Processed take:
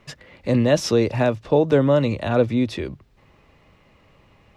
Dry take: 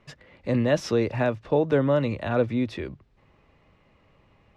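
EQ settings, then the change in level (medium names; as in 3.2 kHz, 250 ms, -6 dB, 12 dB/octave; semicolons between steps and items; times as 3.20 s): dynamic bell 1.7 kHz, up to -4 dB, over -44 dBFS, Q 1.1; treble shelf 4.4 kHz +7.5 dB; +5.0 dB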